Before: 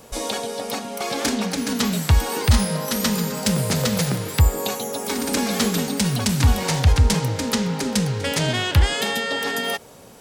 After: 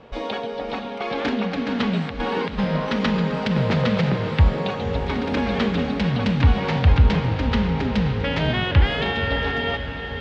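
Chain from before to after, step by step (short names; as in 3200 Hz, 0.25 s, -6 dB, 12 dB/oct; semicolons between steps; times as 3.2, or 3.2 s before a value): LPF 3300 Hz 24 dB/oct; 1.94–4.34 negative-ratio compressor -21 dBFS, ratio -0.5; diffused feedback echo 0.548 s, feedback 61%, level -9.5 dB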